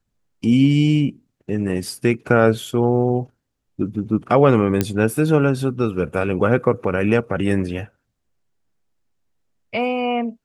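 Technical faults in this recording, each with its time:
4.81 pop -4 dBFS

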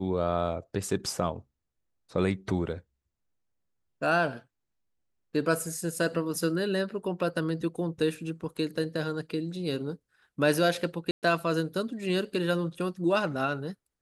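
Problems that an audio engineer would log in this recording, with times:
11.11–11.23 gap 0.118 s

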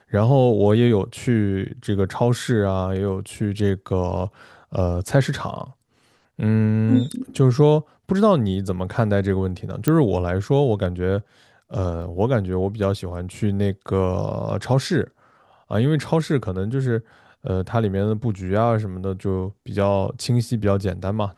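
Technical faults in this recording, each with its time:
9.88 pop -6 dBFS
12.02 gap 2.5 ms

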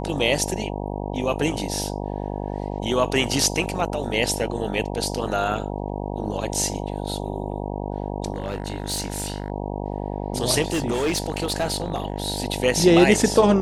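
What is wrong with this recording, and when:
buzz 50 Hz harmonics 19 -29 dBFS
8.34–9.5 clipped -21.5 dBFS
10.66–12.4 clipped -18.5 dBFS

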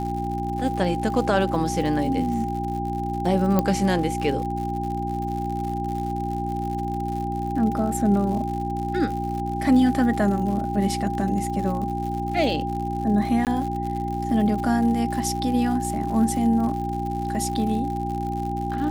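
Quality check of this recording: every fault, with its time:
crackle 120/s -31 dBFS
hum 60 Hz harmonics 6 -29 dBFS
tone 800 Hz -28 dBFS
3.59 pop -8 dBFS
13.45–13.47 gap 18 ms

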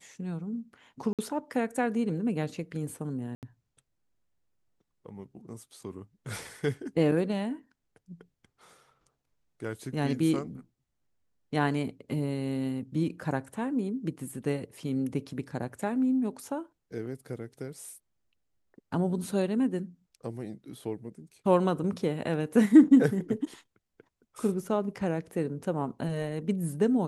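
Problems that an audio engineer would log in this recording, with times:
1.13–1.19 gap 57 ms
3.35–3.43 gap 78 ms

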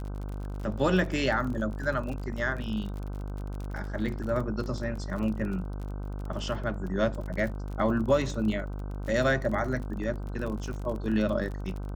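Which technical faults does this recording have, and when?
buzz 50 Hz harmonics 31 -35 dBFS
crackle 39/s -35 dBFS

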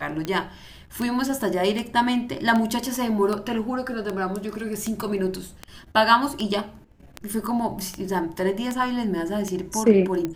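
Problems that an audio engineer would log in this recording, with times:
tick 78 rpm -14 dBFS

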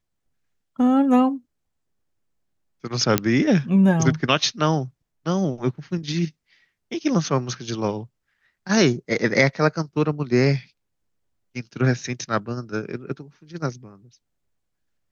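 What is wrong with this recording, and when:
3.18 pop -2 dBFS

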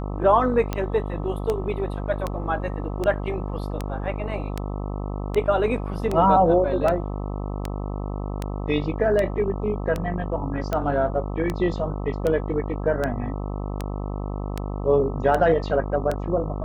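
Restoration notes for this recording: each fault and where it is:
buzz 50 Hz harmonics 26 -29 dBFS
tick 78 rpm -12 dBFS

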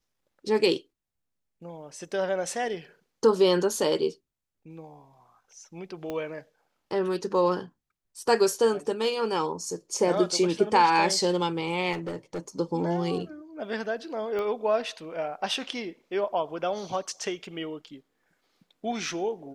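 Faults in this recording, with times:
6.1 pop -20 dBFS
11.92–12.39 clipped -28.5 dBFS
14.39 pop -21 dBFS

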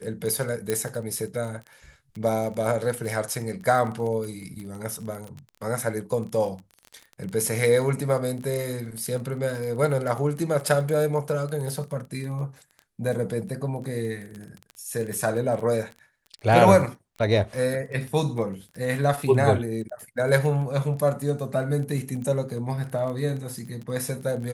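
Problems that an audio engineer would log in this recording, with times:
crackle 17/s -31 dBFS
0.7 pop -11 dBFS

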